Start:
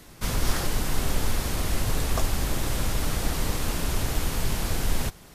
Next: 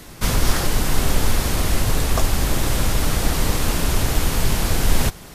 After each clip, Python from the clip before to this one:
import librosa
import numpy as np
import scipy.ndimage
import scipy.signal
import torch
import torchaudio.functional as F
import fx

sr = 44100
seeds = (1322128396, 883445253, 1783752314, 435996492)

y = fx.rider(x, sr, range_db=10, speed_s=0.5)
y = y * librosa.db_to_amplitude(7.0)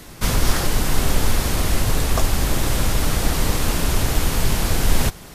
y = x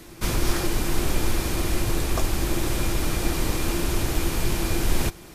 y = fx.small_body(x, sr, hz=(340.0, 2400.0), ring_ms=100, db=13)
y = y * librosa.db_to_amplitude(-5.5)